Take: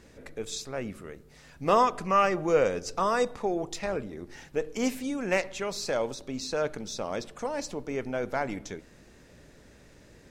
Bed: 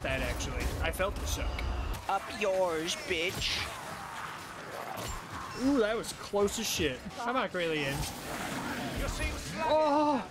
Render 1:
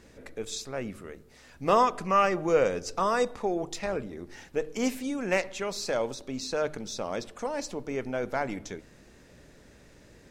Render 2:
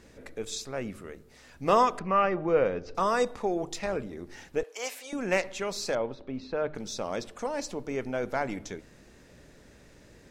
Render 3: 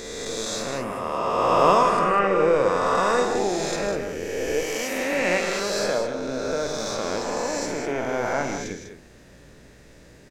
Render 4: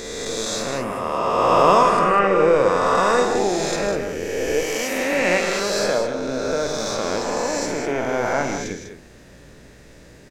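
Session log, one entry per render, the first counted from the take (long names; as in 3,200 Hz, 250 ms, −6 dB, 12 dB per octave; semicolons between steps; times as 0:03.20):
hum removal 50 Hz, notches 3
0:01.99–0:02.95: high-frequency loss of the air 290 metres; 0:04.63–0:05.13: high-pass filter 540 Hz 24 dB per octave; 0:05.95–0:06.75: high-frequency loss of the air 370 metres
peak hold with a rise ahead of every peak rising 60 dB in 2.70 s; on a send: loudspeakers that aren't time-aligned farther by 17 metres −9 dB, 54 metres −10 dB, 68 metres −9 dB
level +3.5 dB; brickwall limiter −3 dBFS, peak gain reduction 1.5 dB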